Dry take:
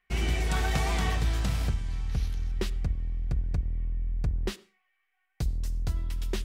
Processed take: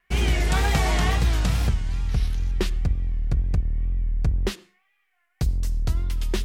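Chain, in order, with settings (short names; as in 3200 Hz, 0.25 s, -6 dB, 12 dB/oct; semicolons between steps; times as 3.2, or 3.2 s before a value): wow and flutter 110 cents; gain +6 dB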